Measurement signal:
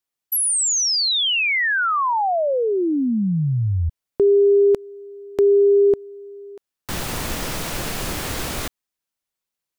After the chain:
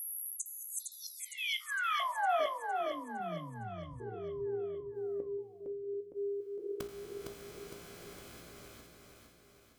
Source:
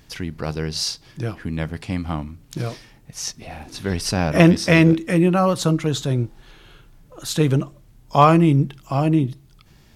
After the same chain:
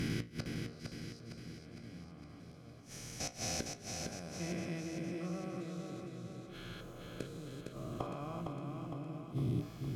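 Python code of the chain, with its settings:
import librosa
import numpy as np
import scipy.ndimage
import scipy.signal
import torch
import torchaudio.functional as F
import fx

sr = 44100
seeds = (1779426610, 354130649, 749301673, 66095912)

p1 = fx.spec_steps(x, sr, hold_ms=400)
p2 = fx.low_shelf(p1, sr, hz=63.0, db=3.0)
p3 = fx.notch_comb(p2, sr, f0_hz=920.0)
p4 = fx.gate_flip(p3, sr, shuts_db=-26.0, range_db=-25)
p5 = fx.comb_fb(p4, sr, f0_hz=58.0, decay_s=0.32, harmonics='all', damping=0.5, mix_pct=70)
p6 = p5 + fx.echo_feedback(p5, sr, ms=459, feedback_pct=54, wet_db=-4.5, dry=0)
y = p6 * 10.0 ** (7.0 / 20.0)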